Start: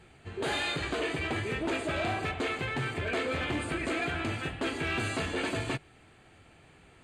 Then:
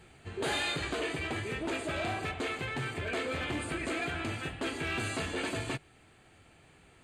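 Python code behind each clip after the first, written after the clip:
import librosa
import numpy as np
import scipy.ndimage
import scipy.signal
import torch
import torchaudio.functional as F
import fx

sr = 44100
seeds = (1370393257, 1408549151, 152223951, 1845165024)

y = fx.high_shelf(x, sr, hz=6500.0, db=6.0)
y = fx.rider(y, sr, range_db=5, speed_s=2.0)
y = y * librosa.db_to_amplitude(-3.0)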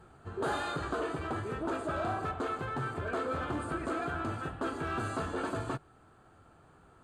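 y = fx.high_shelf_res(x, sr, hz=1700.0, db=-8.0, q=3.0)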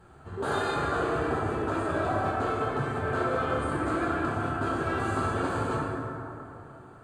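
y = fx.rev_plate(x, sr, seeds[0], rt60_s=3.2, hf_ratio=0.4, predelay_ms=0, drr_db=-5.0)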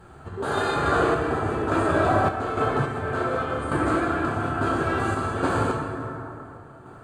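y = fx.tremolo_random(x, sr, seeds[1], hz=3.5, depth_pct=55)
y = y * librosa.db_to_amplitude(7.5)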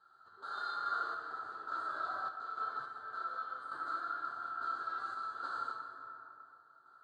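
y = fx.double_bandpass(x, sr, hz=2400.0, octaves=1.6)
y = y * librosa.db_to_amplitude(-7.5)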